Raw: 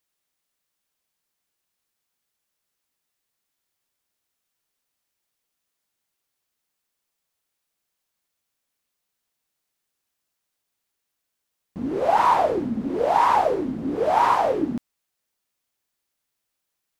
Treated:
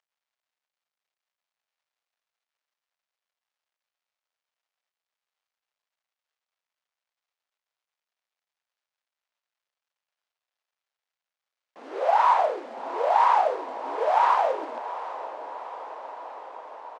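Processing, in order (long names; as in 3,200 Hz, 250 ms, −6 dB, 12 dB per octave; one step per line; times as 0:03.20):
variable-slope delta modulation 64 kbit/s
high-pass filter 550 Hz 24 dB per octave
high-shelf EQ 6,800 Hz −7.5 dB
in parallel at −3 dB: downward compressor, threshold −28 dBFS, peak gain reduction 13 dB
on the sum: high-frequency loss of the air 100 metres
double-tracking delay 34 ms −12 dB
on a send: feedback delay with all-pass diffusion 756 ms, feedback 71%, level −14 dB
on the sum: level −2.5 dB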